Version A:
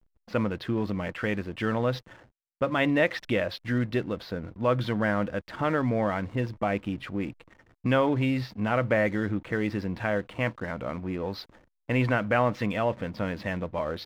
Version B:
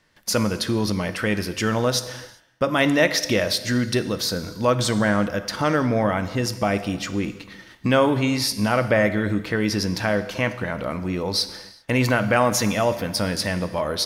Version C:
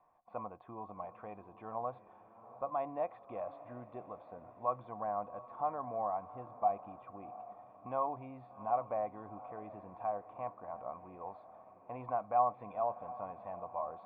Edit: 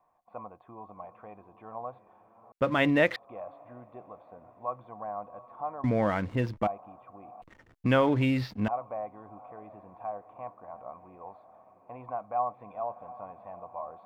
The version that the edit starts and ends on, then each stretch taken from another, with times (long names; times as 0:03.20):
C
0:02.52–0:03.16: punch in from A
0:05.84–0:06.67: punch in from A
0:07.42–0:08.68: punch in from A
not used: B